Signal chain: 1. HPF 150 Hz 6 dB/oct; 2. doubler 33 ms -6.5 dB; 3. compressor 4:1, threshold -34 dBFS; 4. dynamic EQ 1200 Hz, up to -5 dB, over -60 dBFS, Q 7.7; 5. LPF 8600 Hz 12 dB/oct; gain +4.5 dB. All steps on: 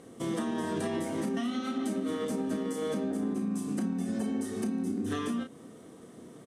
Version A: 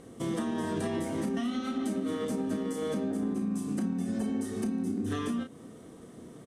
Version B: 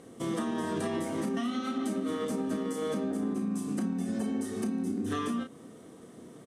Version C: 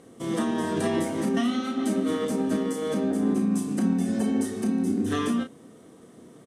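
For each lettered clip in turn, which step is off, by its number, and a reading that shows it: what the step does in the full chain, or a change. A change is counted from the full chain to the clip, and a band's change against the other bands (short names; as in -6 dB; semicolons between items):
1, 125 Hz band +2.5 dB; 4, 1 kHz band +1.5 dB; 3, mean gain reduction 5.0 dB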